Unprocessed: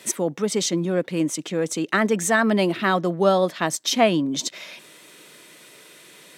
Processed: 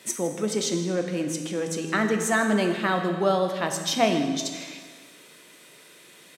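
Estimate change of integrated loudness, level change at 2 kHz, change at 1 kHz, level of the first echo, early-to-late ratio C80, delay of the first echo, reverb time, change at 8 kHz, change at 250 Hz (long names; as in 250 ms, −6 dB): −3.0 dB, −3.0 dB, −3.0 dB, −16.5 dB, 7.0 dB, 159 ms, 1.6 s, −3.5 dB, −3.0 dB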